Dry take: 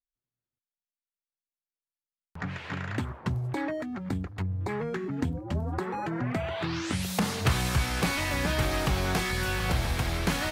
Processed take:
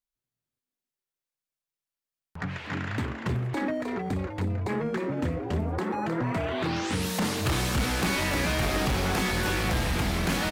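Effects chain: overload inside the chain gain 24.5 dB; frequency-shifting echo 310 ms, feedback 43%, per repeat +130 Hz, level -6 dB; trim +1.5 dB

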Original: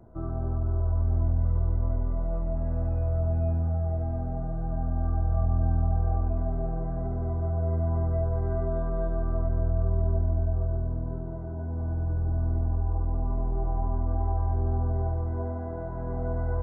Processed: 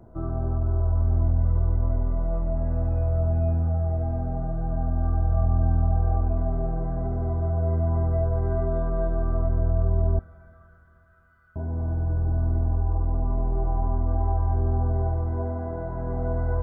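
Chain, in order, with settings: 10.19–11.56 s: steep high-pass 1.2 kHz 96 dB/octave; Schroeder reverb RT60 3.8 s, combs from 29 ms, DRR 16 dB; trim +3 dB

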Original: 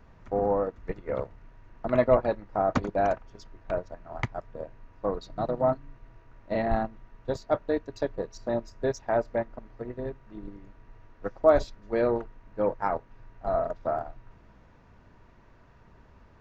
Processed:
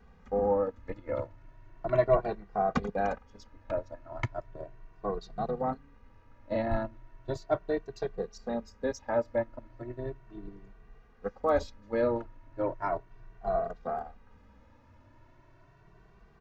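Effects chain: endless flanger 2.1 ms +0.36 Hz

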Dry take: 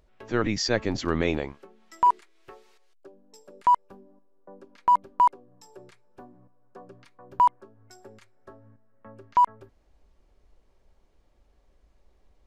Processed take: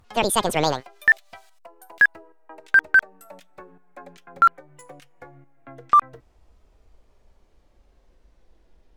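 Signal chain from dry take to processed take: gliding tape speed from 195% -> 83%; trim +4.5 dB

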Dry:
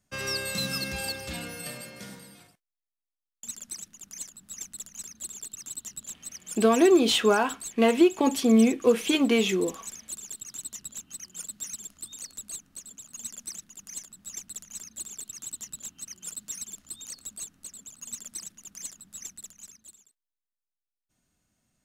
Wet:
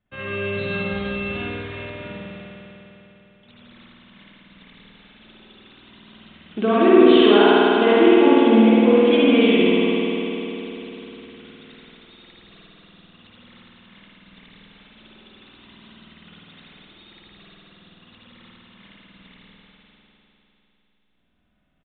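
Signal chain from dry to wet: spring tank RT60 3.7 s, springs 50 ms, chirp 45 ms, DRR -9 dB; resampled via 8 kHz; trim -1.5 dB

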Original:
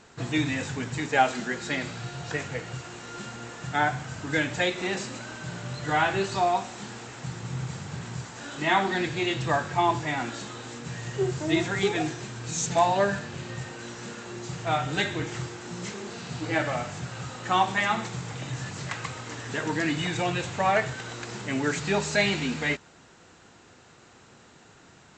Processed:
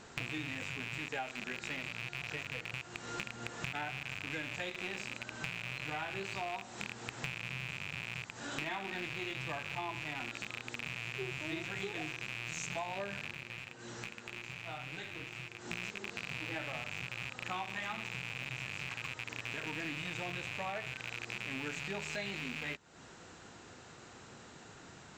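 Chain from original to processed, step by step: rattle on loud lows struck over -40 dBFS, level -14 dBFS; compression 8:1, threshold -37 dBFS, peak gain reduction 21 dB; 13.33–15.59 s: flange 1.9 Hz, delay 5.2 ms, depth 6.6 ms, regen -49%

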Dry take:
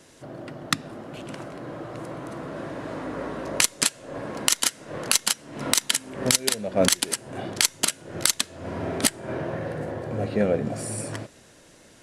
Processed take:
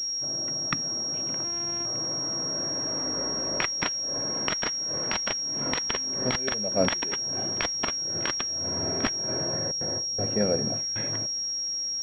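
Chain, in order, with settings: 1.44–1.86 s: sorted samples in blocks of 128 samples; 9.71–10.96 s: gate with hold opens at -20 dBFS; class-D stage that switches slowly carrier 5.6 kHz; trim -3 dB

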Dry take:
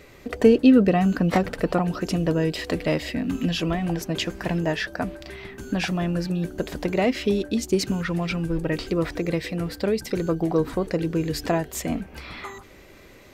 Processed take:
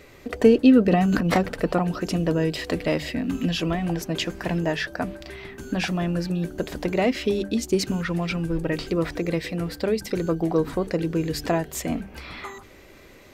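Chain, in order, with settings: hum notches 50/100/150/200 Hz; 0.88–1.34 s: transient shaper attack -11 dB, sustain +9 dB

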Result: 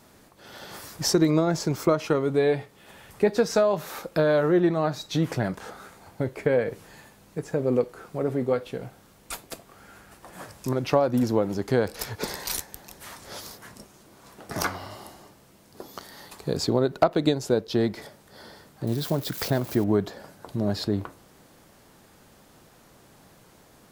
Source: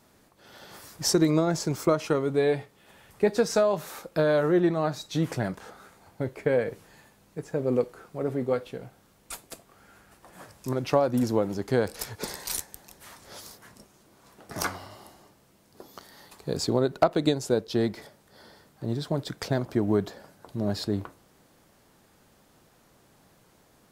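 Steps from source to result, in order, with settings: 18.87–19.84 s: zero-crossing glitches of -30 dBFS; dynamic bell 8.7 kHz, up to -5 dB, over -51 dBFS, Q 1.1; in parallel at -0.5 dB: compression, threshold -34 dBFS, peak gain reduction 17.5 dB

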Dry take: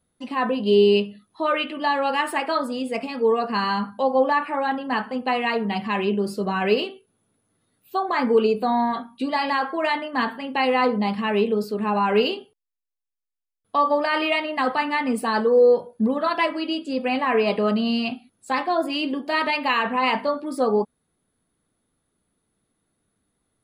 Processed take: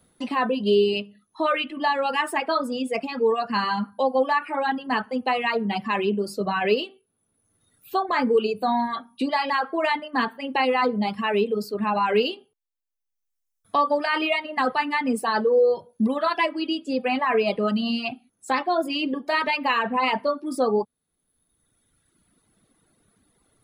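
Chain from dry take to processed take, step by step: reverb removal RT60 1.5 s; three bands compressed up and down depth 40%

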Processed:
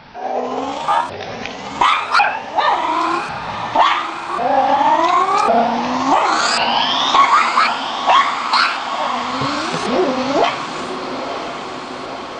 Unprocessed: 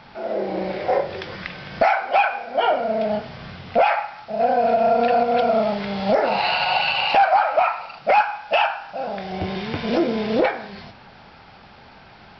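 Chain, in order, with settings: sawtooth pitch modulation +10 st, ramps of 1096 ms; echo that smears into a reverb 993 ms, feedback 67%, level -9 dB; trim +5 dB

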